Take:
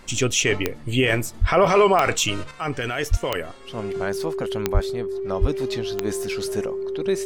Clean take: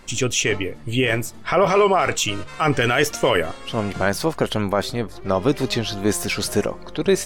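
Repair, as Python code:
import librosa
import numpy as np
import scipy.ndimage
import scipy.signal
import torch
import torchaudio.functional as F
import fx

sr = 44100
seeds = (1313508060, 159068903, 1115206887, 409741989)

y = fx.fix_declick_ar(x, sr, threshold=10.0)
y = fx.notch(y, sr, hz=390.0, q=30.0)
y = fx.fix_deplosive(y, sr, at_s=(1.4, 3.1, 4.73, 5.4))
y = fx.gain(y, sr, db=fx.steps((0.0, 0.0), (2.51, 8.0)))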